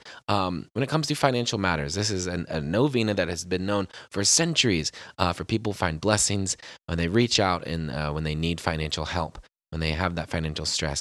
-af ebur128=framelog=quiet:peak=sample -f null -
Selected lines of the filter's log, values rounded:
Integrated loudness:
  I:         -25.6 LUFS
  Threshold: -35.6 LUFS
Loudness range:
  LRA:         3.2 LU
  Threshold: -45.3 LUFS
  LRA low:   -27.4 LUFS
  LRA high:  -24.1 LUFS
Sample peak:
  Peak:       -2.6 dBFS